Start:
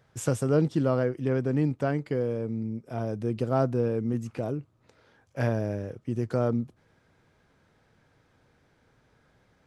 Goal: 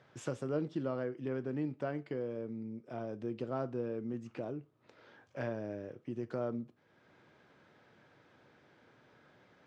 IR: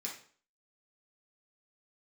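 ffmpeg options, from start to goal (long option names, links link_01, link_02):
-filter_complex "[0:a]acompressor=threshold=-57dB:ratio=1.5,highpass=140,lowpass=4300,asplit=2[link_01][link_02];[1:a]atrim=start_sample=2205,asetrate=61740,aresample=44100[link_03];[link_02][link_03]afir=irnorm=-1:irlink=0,volume=-7.5dB[link_04];[link_01][link_04]amix=inputs=2:normalize=0,volume=2dB"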